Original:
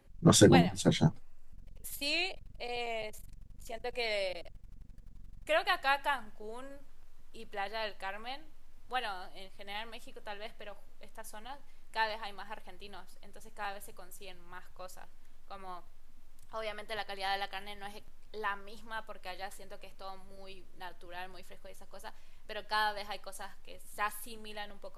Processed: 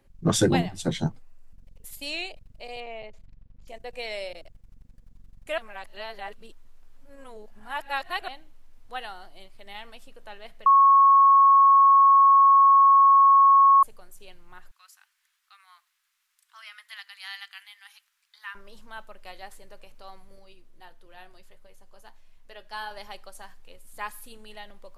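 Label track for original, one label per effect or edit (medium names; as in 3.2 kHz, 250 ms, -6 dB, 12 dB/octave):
2.800000	3.680000	distance through air 200 m
5.580000	8.280000	reverse
10.660000	13.830000	bleep 1.1 kHz -12.5 dBFS
14.710000	18.550000	inverse Chebyshev high-pass stop band from 390 Hz, stop band 60 dB
20.390000	22.910000	flange 1.5 Hz, delay 6.1 ms, depth 2.5 ms, regen -70%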